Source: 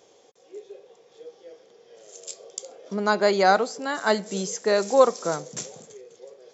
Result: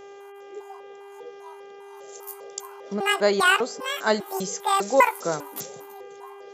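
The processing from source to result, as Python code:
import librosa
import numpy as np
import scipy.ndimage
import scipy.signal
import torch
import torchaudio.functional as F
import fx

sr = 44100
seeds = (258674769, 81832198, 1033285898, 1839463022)

y = fx.pitch_trill(x, sr, semitones=11.5, every_ms=200)
y = fx.dmg_buzz(y, sr, base_hz=400.0, harmonics=8, level_db=-44.0, tilt_db=-8, odd_only=False)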